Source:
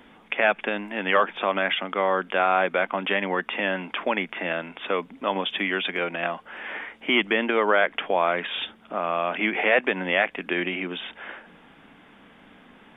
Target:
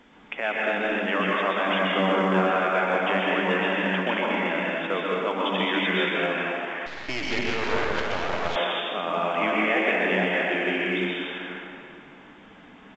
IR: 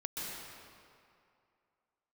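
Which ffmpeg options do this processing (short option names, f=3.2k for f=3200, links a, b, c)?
-filter_complex "[0:a]asplit=3[a][b][c];[a]afade=t=out:st=1.66:d=0.02[d];[b]equalizer=f=170:t=o:w=2.3:g=9,afade=t=in:st=1.66:d=0.02,afade=t=out:st=2.28:d=0.02[e];[c]afade=t=in:st=2.28:d=0.02[f];[d][e][f]amix=inputs=3:normalize=0,alimiter=limit=-12dB:level=0:latency=1:release=219,asplit=2[g][h];[h]adelay=477,lowpass=f=2.4k:p=1,volume=-21dB,asplit=2[i][j];[j]adelay=477,lowpass=f=2.4k:p=1,volume=0.25[k];[g][i][k]amix=inputs=3:normalize=0[l];[1:a]atrim=start_sample=2205[m];[l][m]afir=irnorm=-1:irlink=0,asettb=1/sr,asplit=3[n][o][p];[n]atrim=end=6.864[q];[o]atrim=start=6.86:end=8.56,asetpts=PTS-STARTPTS,afade=t=in:d=0.004:c=qsin,afade=t=out:st=1.696:d=0.004:c=qsin,aeval=exprs='max(val(0),0)':c=same[r];[p]atrim=start=8.556[s];[q][r]acrossfade=d=0.004:c1=hsin:c2=qsin[t];[t][s]acrossfade=d=0.004:c1=qsin:c2=hsin" -ar 16000 -c:a pcm_alaw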